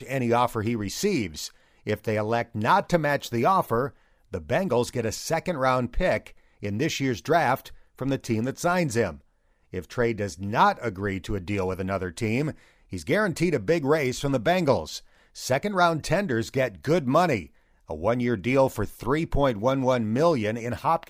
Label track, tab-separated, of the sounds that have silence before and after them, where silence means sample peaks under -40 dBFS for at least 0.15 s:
1.860000	3.900000	sound
4.320000	6.300000	sound
6.620000	7.730000	sound
7.990000	9.170000	sound
9.730000	12.530000	sound
12.920000	14.990000	sound
15.360000	17.460000	sound